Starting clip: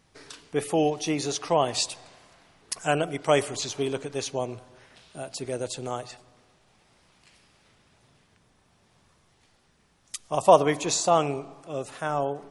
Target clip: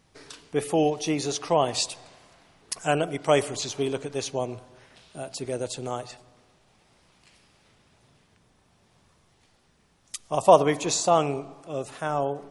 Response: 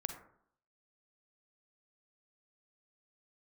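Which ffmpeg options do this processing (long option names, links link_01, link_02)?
-filter_complex "[0:a]asplit=2[link_01][link_02];[1:a]atrim=start_sample=2205,lowpass=frequency=1800:width=0.5412,lowpass=frequency=1800:width=1.3066[link_03];[link_02][link_03]afir=irnorm=-1:irlink=0,volume=-16dB[link_04];[link_01][link_04]amix=inputs=2:normalize=0"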